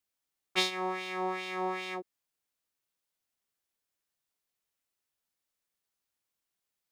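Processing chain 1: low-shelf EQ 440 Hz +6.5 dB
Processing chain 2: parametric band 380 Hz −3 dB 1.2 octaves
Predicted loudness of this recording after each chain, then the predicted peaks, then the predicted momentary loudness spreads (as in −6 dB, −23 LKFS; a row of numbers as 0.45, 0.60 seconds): −32.0, −34.0 LKFS; −11.5, −13.0 dBFS; 9, 8 LU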